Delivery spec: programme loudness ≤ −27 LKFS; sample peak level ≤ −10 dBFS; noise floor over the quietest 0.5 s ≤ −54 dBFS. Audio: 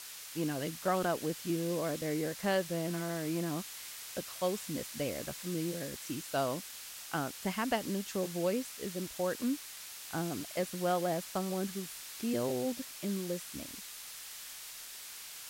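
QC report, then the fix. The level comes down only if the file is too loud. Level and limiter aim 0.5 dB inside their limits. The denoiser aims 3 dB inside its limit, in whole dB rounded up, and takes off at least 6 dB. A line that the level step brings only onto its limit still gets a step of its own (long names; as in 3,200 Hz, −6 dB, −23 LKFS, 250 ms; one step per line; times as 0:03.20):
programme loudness −36.0 LKFS: in spec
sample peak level −17.5 dBFS: in spec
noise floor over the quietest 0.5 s −47 dBFS: out of spec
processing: broadband denoise 10 dB, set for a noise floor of −47 dBFS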